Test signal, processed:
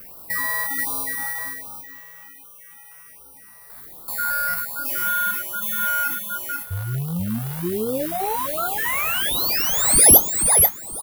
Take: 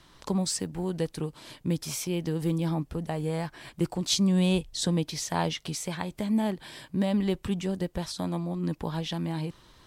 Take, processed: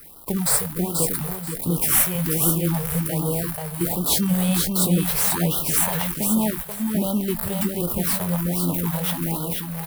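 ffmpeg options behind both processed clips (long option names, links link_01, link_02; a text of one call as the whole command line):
ffmpeg -i in.wav -filter_complex "[0:a]aeval=exprs='val(0)+0.5*0.0224*sgn(val(0))':channel_layout=same,agate=range=-19dB:threshold=-33dB:ratio=16:detection=peak,aexciter=amount=6.3:drive=9.2:freq=9100,asplit=2[link_01][link_02];[link_02]acrusher=samples=12:mix=1:aa=0.000001:lfo=1:lforange=7.2:lforate=0.32,volume=-9dB[link_03];[link_01][link_03]amix=inputs=2:normalize=0,asplit=2[link_04][link_05];[link_05]adelay=23,volume=-11.5dB[link_06];[link_04][link_06]amix=inputs=2:normalize=0,aecho=1:1:485|970|1455:0.631|0.133|0.0278,afftfilt=real='re*(1-between(b*sr/1024,250*pow(2100/250,0.5+0.5*sin(2*PI*1.3*pts/sr))/1.41,250*pow(2100/250,0.5+0.5*sin(2*PI*1.3*pts/sr))*1.41))':imag='im*(1-between(b*sr/1024,250*pow(2100/250,0.5+0.5*sin(2*PI*1.3*pts/sr))/1.41,250*pow(2100/250,0.5+0.5*sin(2*PI*1.3*pts/sr))*1.41))':win_size=1024:overlap=0.75,volume=-1dB" out.wav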